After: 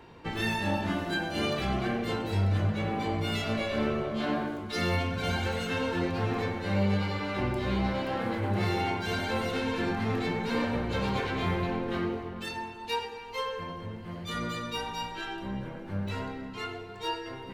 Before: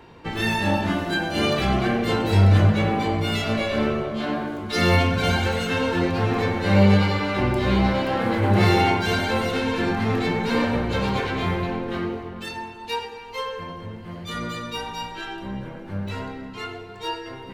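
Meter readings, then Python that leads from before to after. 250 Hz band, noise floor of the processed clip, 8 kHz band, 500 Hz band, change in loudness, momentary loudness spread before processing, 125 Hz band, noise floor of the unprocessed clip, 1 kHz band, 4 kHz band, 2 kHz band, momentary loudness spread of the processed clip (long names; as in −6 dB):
−8.0 dB, −42 dBFS, −7.5 dB, −7.5 dB, −8.5 dB, 15 LU, −9.5 dB, −39 dBFS, −7.5 dB, −7.0 dB, −7.5 dB, 8 LU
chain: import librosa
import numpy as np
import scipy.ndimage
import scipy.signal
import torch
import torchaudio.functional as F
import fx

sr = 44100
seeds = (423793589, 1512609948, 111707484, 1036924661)

y = fx.rider(x, sr, range_db=4, speed_s=0.5)
y = y * librosa.db_to_amplitude(-7.5)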